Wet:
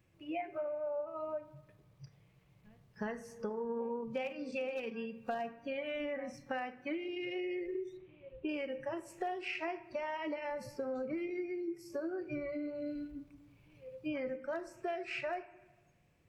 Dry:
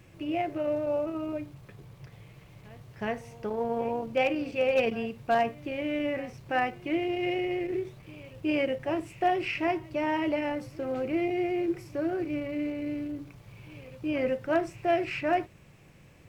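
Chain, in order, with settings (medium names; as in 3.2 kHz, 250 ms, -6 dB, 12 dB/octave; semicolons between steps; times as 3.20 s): 7.97–8.49 s: steep low-pass 3.7 kHz; spectral noise reduction 19 dB; compression 12:1, threshold -38 dBFS, peak gain reduction 18 dB; on a send: reverberation RT60 1.2 s, pre-delay 13 ms, DRR 13 dB; on the sum: trim +2.5 dB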